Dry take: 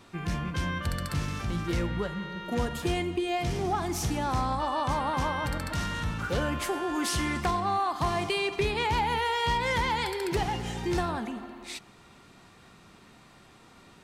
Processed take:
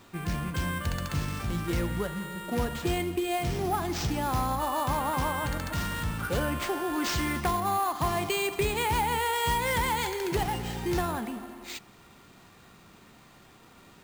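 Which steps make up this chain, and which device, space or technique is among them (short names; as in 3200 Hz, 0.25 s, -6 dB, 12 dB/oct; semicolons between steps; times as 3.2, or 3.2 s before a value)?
early companding sampler (sample-rate reducer 11000 Hz, jitter 0%; companded quantiser 6-bit)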